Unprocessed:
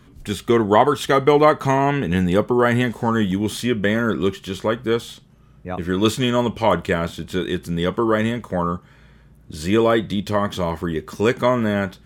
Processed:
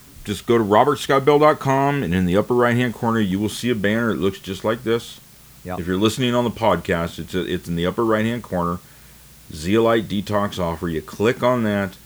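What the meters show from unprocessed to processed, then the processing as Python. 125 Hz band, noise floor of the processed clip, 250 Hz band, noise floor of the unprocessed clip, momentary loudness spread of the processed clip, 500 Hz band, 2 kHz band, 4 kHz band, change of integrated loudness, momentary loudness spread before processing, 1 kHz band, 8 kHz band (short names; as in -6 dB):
0.0 dB, -46 dBFS, 0.0 dB, -50 dBFS, 10 LU, 0.0 dB, 0.0 dB, 0.0 dB, 0.0 dB, 10 LU, 0.0 dB, +1.0 dB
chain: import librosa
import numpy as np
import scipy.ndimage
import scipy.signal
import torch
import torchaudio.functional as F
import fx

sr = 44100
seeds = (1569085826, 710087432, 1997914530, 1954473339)

y = fx.quant_dither(x, sr, seeds[0], bits=8, dither='triangular')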